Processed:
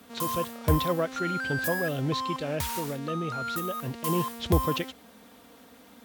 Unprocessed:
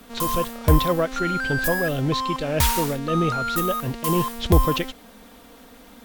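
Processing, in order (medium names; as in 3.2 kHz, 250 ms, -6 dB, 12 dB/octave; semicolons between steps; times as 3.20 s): high-pass 68 Hz 24 dB/octave; 2.54–4.01 s: compression, threshold -22 dBFS, peak gain reduction 7 dB; trim -5.5 dB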